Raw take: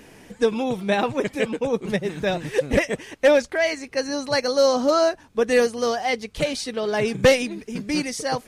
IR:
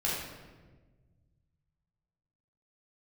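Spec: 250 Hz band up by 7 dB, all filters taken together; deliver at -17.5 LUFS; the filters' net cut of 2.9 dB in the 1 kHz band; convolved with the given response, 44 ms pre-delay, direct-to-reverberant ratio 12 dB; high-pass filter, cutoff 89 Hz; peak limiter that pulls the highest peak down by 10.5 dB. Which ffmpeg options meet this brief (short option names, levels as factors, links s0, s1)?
-filter_complex "[0:a]highpass=89,equalizer=f=250:t=o:g=8.5,equalizer=f=1000:t=o:g=-5,alimiter=limit=0.211:level=0:latency=1,asplit=2[s0][s1];[1:a]atrim=start_sample=2205,adelay=44[s2];[s1][s2]afir=irnorm=-1:irlink=0,volume=0.106[s3];[s0][s3]amix=inputs=2:normalize=0,volume=1.88"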